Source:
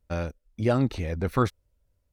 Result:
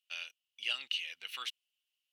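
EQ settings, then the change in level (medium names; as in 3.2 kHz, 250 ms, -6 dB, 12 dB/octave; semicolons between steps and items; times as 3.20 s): resonant high-pass 2.9 kHz, resonance Q 12; -4.5 dB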